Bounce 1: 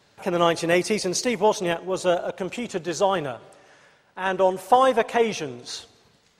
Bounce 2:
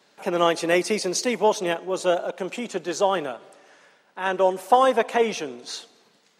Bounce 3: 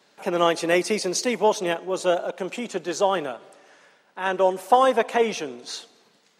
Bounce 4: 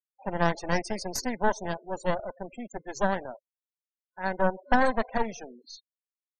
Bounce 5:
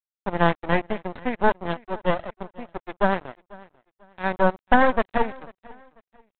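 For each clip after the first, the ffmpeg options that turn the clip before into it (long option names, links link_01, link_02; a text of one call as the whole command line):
ffmpeg -i in.wav -af "highpass=frequency=190:width=0.5412,highpass=frequency=190:width=1.3066" out.wav
ffmpeg -i in.wav -af anull out.wav
ffmpeg -i in.wav -af "aeval=exprs='0.596*(cos(1*acos(clip(val(0)/0.596,-1,1)))-cos(1*PI/2))+0.266*(cos(4*acos(clip(val(0)/0.596,-1,1)))-cos(4*PI/2))':channel_layout=same,afftfilt=real='re*gte(hypot(re,im),0.0398)':imag='im*gte(hypot(re,im),0.0398)':win_size=1024:overlap=0.75,superequalizer=6b=0.501:7b=0.501:10b=0.447:12b=0.355:13b=0.355,volume=-7dB" out.wav
ffmpeg -i in.wav -af "aresample=8000,aeval=exprs='sgn(val(0))*max(abs(val(0))-0.0112,0)':channel_layout=same,aresample=44100,aecho=1:1:493|986:0.0708|0.0219,volume=6dB" out.wav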